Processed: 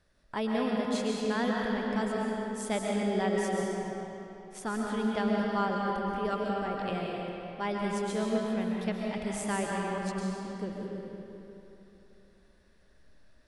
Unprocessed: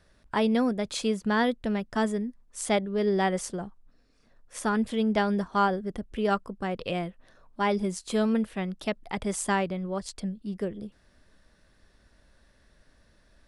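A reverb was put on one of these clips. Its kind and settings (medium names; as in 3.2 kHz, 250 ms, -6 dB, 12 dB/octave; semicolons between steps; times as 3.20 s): algorithmic reverb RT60 3.2 s, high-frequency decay 0.75×, pre-delay 90 ms, DRR -2.5 dB; trim -7.5 dB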